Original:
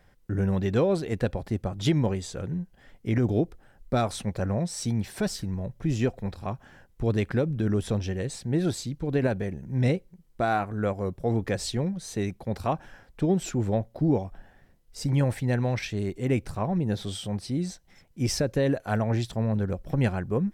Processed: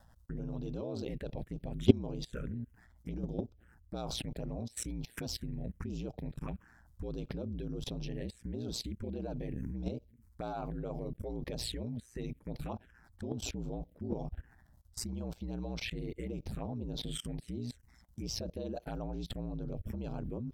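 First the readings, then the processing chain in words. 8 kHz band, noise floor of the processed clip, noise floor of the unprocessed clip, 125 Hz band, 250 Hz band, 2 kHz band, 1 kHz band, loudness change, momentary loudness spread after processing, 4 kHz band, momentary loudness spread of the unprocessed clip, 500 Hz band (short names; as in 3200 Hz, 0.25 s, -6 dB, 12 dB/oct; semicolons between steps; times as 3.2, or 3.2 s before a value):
-8.0 dB, -63 dBFS, -60 dBFS, -13.0 dB, -10.5 dB, -14.5 dB, -15.0 dB, -11.5 dB, 6 LU, -5.5 dB, 8 LU, -12.5 dB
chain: ring modulator 59 Hz; envelope phaser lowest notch 380 Hz, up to 1900 Hz, full sweep at -25.5 dBFS; level quantiser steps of 23 dB; gain +7.5 dB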